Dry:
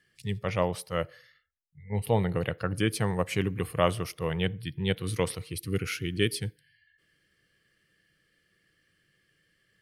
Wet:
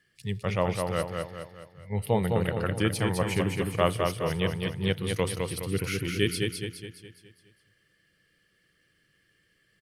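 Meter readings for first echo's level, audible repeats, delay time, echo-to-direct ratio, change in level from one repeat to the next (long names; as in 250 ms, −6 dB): −4.0 dB, 5, 208 ms, −3.0 dB, −6.5 dB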